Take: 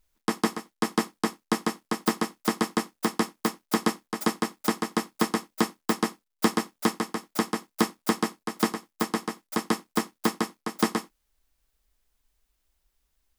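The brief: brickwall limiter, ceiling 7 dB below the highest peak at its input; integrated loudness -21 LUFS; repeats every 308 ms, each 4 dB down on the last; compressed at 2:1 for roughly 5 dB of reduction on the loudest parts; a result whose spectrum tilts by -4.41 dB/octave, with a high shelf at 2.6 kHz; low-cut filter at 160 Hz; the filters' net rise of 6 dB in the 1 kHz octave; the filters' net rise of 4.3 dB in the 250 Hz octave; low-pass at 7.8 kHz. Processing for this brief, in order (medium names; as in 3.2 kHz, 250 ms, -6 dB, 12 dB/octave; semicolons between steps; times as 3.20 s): high-pass 160 Hz; low-pass 7.8 kHz; peaking EQ 250 Hz +6 dB; peaking EQ 1 kHz +8 dB; treble shelf 2.6 kHz -7 dB; compression 2:1, threshold -24 dBFS; peak limiter -16.5 dBFS; feedback delay 308 ms, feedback 63%, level -4 dB; trim +10 dB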